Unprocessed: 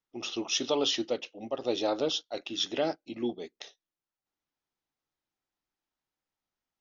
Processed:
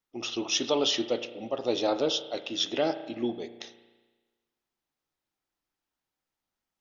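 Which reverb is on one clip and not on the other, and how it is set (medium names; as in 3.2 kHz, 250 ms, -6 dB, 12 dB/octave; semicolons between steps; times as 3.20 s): spring tank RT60 1.3 s, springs 34 ms, chirp 75 ms, DRR 11 dB; trim +2 dB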